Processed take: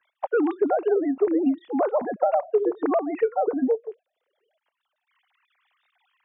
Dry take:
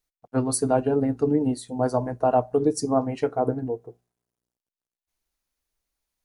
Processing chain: sine-wave speech; three-band squash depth 100%

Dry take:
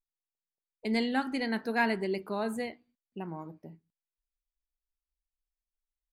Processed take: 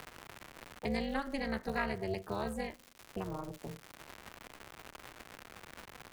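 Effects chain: crackle 360/s -42 dBFS; AM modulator 290 Hz, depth 100%; three-band squash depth 70%

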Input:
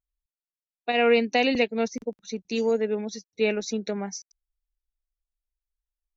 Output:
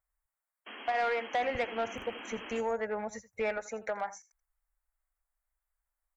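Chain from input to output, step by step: EQ curve 110 Hz 0 dB, 160 Hz -16 dB, 370 Hz -13 dB, 540 Hz +6 dB, 770 Hz +11 dB, 1300 Hz +12 dB, 2100 Hz +8 dB, 3400 Hz -21 dB, 5100 Hz -20 dB, 7600 Hz +5 dB; compressor 2:1, threshold -35 dBFS, peak gain reduction 12.5 dB; 0.66–2.61 painted sound noise 200–3300 Hz -46 dBFS; 1.33–3.58 tone controls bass +14 dB, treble +4 dB; echo 83 ms -17.5 dB; soft clip -23 dBFS, distortion -16 dB; AAC 192 kbps 44100 Hz

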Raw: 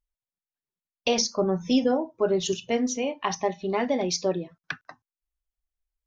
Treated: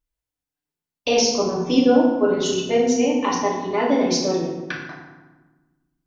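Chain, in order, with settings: FDN reverb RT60 1.2 s, low-frequency decay 1.5×, high-frequency decay 0.65×, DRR -4.5 dB

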